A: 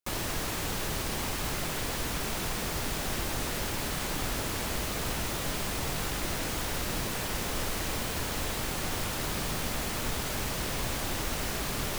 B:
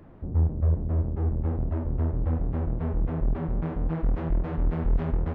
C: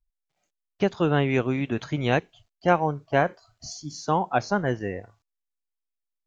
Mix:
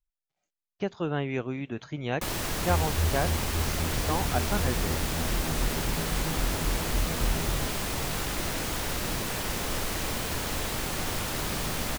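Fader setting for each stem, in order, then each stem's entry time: +1.5, −5.0, −7.5 decibels; 2.15, 2.35, 0.00 seconds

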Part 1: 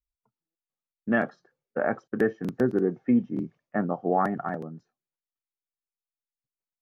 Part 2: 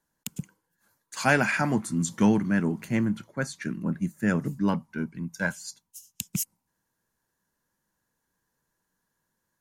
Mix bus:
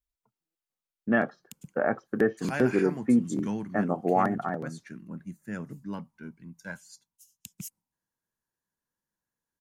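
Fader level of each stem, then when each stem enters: 0.0, −11.5 decibels; 0.00, 1.25 seconds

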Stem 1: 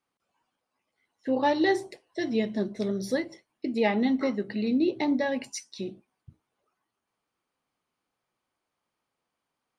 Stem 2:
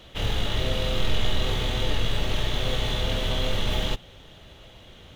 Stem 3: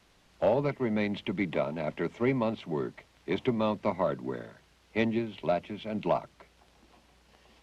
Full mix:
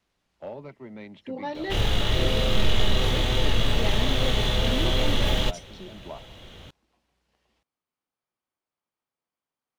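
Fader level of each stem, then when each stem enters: −9.0, +2.5, −12.5 decibels; 0.00, 1.55, 0.00 seconds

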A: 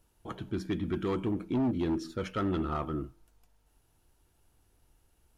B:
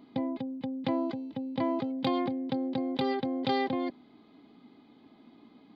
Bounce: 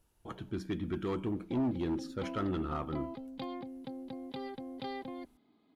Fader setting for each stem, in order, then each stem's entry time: −3.5, −12.0 decibels; 0.00, 1.35 seconds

